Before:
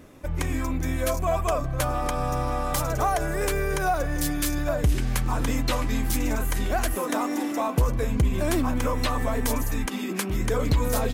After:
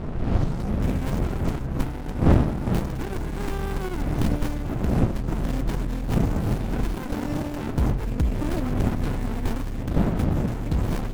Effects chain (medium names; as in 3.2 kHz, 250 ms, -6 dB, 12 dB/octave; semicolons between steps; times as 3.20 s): tape start-up on the opening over 0.88 s; wind noise 300 Hz -19 dBFS; gain riding within 4 dB 0.5 s; treble shelf 7.9 kHz +10.5 dB; sliding maximum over 65 samples; trim -4.5 dB